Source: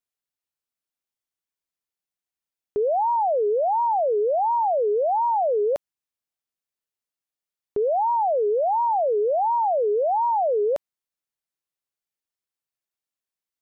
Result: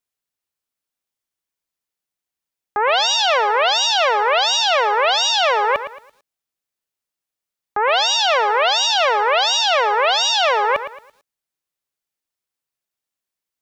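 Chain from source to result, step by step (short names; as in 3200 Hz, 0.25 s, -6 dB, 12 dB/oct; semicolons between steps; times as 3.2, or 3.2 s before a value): self-modulated delay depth 0.86 ms; lo-fi delay 0.112 s, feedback 35%, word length 9-bit, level -11 dB; gain +4.5 dB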